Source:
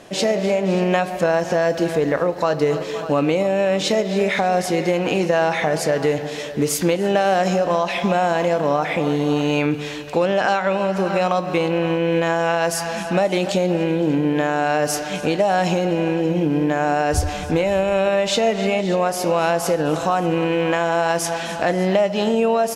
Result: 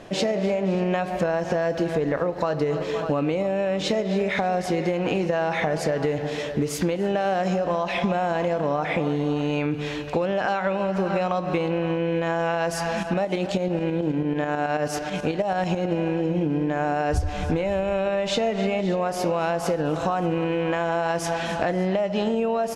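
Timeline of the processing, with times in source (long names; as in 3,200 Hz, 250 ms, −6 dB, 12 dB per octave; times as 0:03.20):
0:13.03–0:15.92: shaped tremolo saw up 9.2 Hz, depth 55%
whole clip: low-pass filter 3,500 Hz 6 dB per octave; low-shelf EQ 84 Hz +10 dB; downward compressor, threshold −20 dBFS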